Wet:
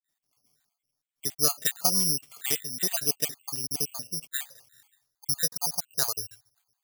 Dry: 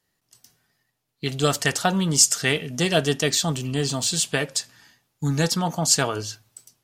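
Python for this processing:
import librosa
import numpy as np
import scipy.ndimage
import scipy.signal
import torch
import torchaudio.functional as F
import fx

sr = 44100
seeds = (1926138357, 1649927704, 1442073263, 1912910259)

y = fx.spec_dropout(x, sr, seeds[0], share_pct=50)
y = (np.kron(scipy.signal.resample_poly(y, 1, 8), np.eye(8)[0]) * 8)[:len(y)]
y = fx.peak_eq(y, sr, hz=fx.steps((0.0, 69.0), (4.46, 230.0)), db=-10.0, octaves=1.3)
y = F.gain(torch.from_numpy(y), -11.0).numpy()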